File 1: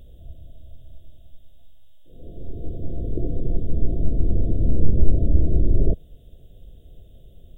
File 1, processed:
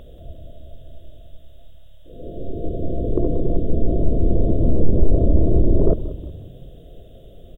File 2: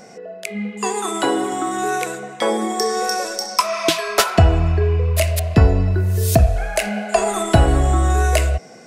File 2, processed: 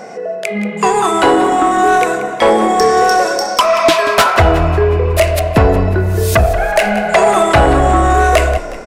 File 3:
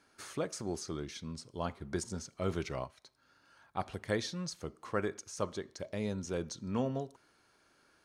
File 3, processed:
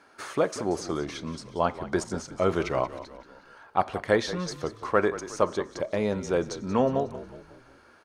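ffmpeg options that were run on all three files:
-filter_complex "[0:a]equalizer=f=840:w=0.31:g=12,acontrast=29,asplit=2[a][b];[b]asplit=5[c][d][e][f][g];[c]adelay=182,afreqshift=-36,volume=-14dB[h];[d]adelay=364,afreqshift=-72,volume=-20.4dB[i];[e]adelay=546,afreqshift=-108,volume=-26.8dB[j];[f]adelay=728,afreqshift=-144,volume=-33.1dB[k];[g]adelay=910,afreqshift=-180,volume=-39.5dB[l];[h][i][j][k][l]amix=inputs=5:normalize=0[m];[a][m]amix=inputs=2:normalize=0,volume=-3.5dB"

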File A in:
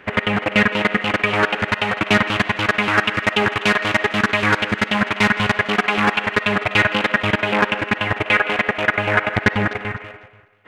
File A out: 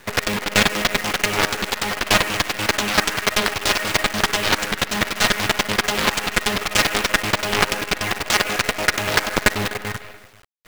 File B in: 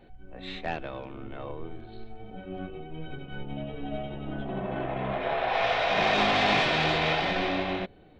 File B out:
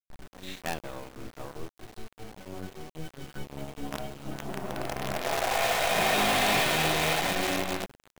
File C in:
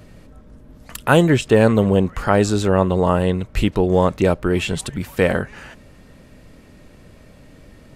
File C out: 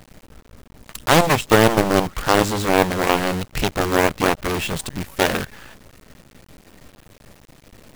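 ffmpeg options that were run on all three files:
-af "acrusher=bits=5:dc=4:mix=0:aa=0.000001,aeval=exprs='0.944*(cos(1*acos(clip(val(0)/0.944,-1,1)))-cos(1*PI/2))+0.299*(cos(7*acos(clip(val(0)/0.944,-1,1)))-cos(7*PI/2))':c=same,volume=-1dB"

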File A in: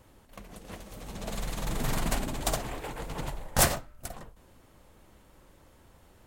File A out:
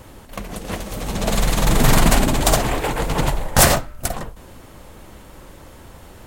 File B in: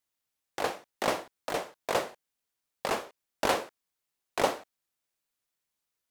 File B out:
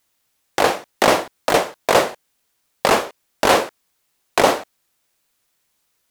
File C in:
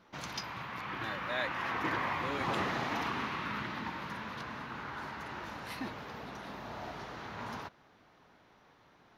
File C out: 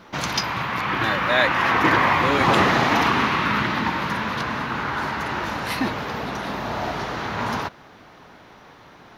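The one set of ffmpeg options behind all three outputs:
-af "alimiter=level_in=17dB:limit=-1dB:release=50:level=0:latency=1,volume=-1dB"

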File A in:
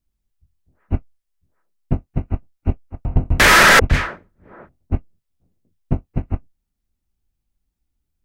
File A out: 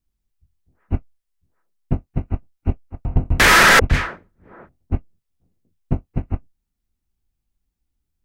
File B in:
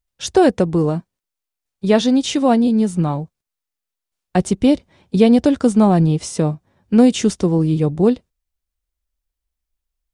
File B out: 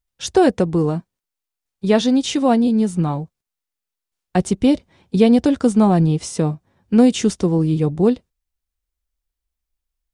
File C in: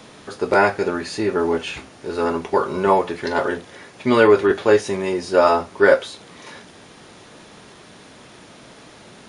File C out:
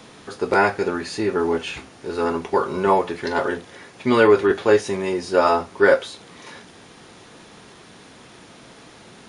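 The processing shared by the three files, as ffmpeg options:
-af "bandreject=f=600:w=16,volume=-1dB"

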